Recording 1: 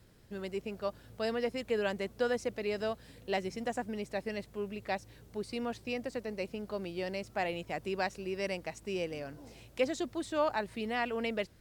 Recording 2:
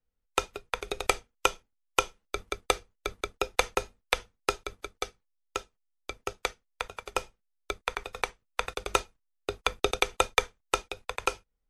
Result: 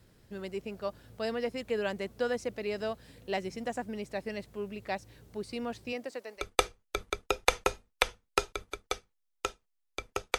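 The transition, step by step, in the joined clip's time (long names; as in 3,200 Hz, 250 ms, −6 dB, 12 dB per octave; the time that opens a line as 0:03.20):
recording 1
0:05.92–0:06.45: high-pass filter 200 Hz → 880 Hz
0:06.40: continue with recording 2 from 0:02.51, crossfade 0.10 s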